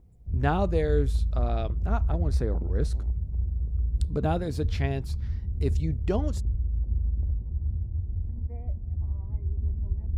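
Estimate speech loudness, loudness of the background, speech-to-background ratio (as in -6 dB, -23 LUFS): -31.5 LUFS, -30.5 LUFS, -1.0 dB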